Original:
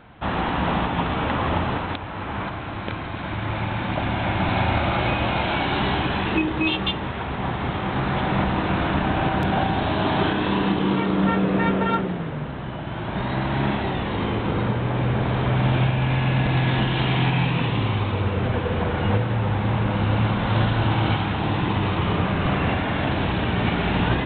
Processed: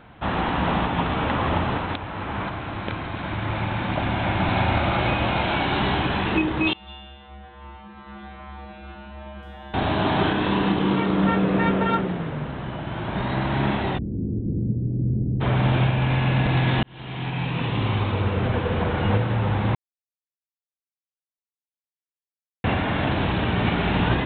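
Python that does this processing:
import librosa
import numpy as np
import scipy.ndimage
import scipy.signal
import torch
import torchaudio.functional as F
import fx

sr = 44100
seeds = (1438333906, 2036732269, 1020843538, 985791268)

y = fx.comb_fb(x, sr, f0_hz=69.0, decay_s=1.3, harmonics='odd', damping=0.0, mix_pct=100, at=(6.73, 9.74))
y = fx.cheby2_lowpass(y, sr, hz=1100.0, order=4, stop_db=60, at=(13.97, 15.4), fade=0.02)
y = fx.edit(y, sr, fx.fade_in_span(start_s=16.83, length_s=1.11),
    fx.silence(start_s=19.75, length_s=2.89), tone=tone)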